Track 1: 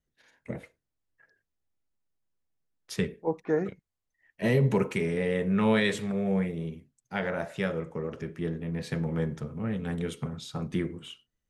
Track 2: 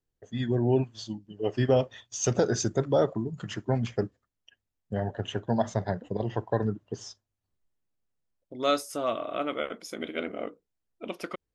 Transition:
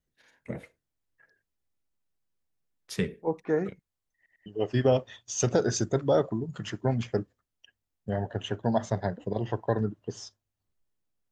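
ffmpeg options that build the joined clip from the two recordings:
-filter_complex "[0:a]apad=whole_dur=11.31,atrim=end=11.31,asplit=3[a][b][c];[a]atrim=end=4.262[d];[b]atrim=start=4.158:end=4.262[e];[c]atrim=start=4.158:end=4.262[f];[1:a]atrim=start=1.298:end=8.15[g];[d][e]acrossfade=d=0.004:c1=hsin:c2=hsin[h];[h][f]acrossfade=d=0.004:c1=hsin:c2=hsin[i];[i][g]acrossfade=d=0.004:c1=hsin:c2=hsin"

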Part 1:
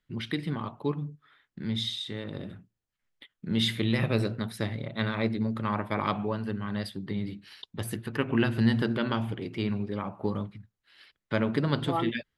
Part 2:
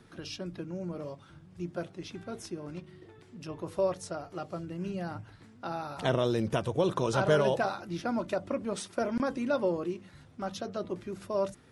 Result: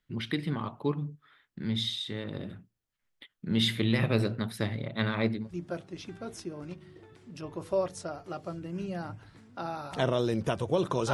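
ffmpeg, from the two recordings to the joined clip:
-filter_complex "[0:a]apad=whole_dur=11.13,atrim=end=11.13,atrim=end=5.5,asetpts=PTS-STARTPTS[a];[1:a]atrim=start=1.36:end=7.19,asetpts=PTS-STARTPTS[b];[a][b]acrossfade=d=0.2:c1=tri:c2=tri"

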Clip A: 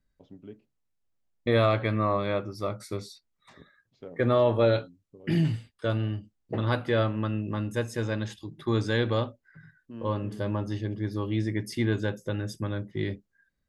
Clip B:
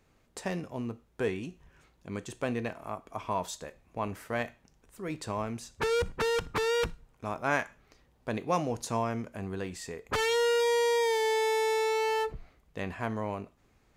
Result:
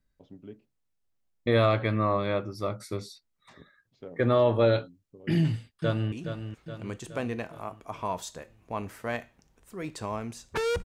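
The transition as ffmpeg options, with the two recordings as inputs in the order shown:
-filter_complex "[0:a]apad=whole_dur=10.84,atrim=end=10.84,atrim=end=6.122[a];[1:a]atrim=start=1.378:end=6.1[b];[a][b]acrossfade=d=0.004:c1=hsin:c2=hsin,asplit=2[c][d];[d]afade=t=in:st=5.4:d=0.01,afade=t=out:st=6.12:d=0.01,aecho=0:1:420|840|1260|1680|2100|2520|2940:0.375837|0.206711|0.113691|0.0625299|0.0343915|0.0189153|0.0104034[e];[c][e]amix=inputs=2:normalize=0"

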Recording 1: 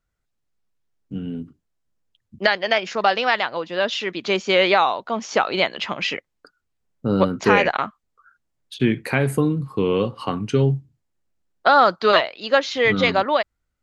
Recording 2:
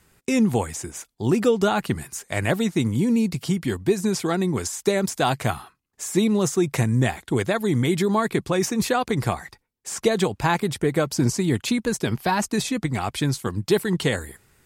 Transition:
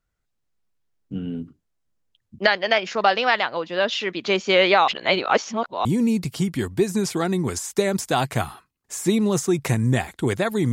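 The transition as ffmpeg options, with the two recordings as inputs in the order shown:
-filter_complex "[0:a]apad=whole_dur=10.72,atrim=end=10.72,asplit=2[a][b];[a]atrim=end=4.882[c];[b]atrim=start=4.878:end=5.852,asetpts=PTS-STARTPTS,areverse[d];[1:a]atrim=start=2.938:end=7.81[e];[c][d]acrossfade=d=0.004:c1=hsin:c2=hsin[f];[f][e]acrossfade=d=0.004:c1=hsin:c2=hsin"

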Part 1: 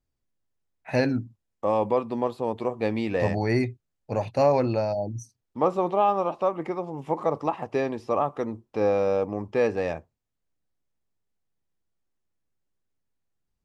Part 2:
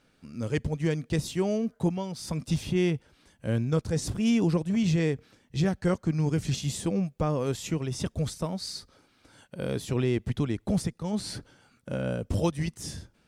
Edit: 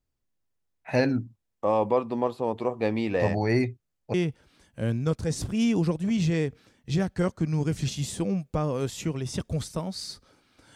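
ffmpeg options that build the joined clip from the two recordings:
-filter_complex "[0:a]apad=whole_dur=10.75,atrim=end=10.75,atrim=end=4.142[a];[1:a]atrim=start=2.798:end=9.41[b];[a][b]acrossfade=d=0.004:c1=hsin:c2=hsin"

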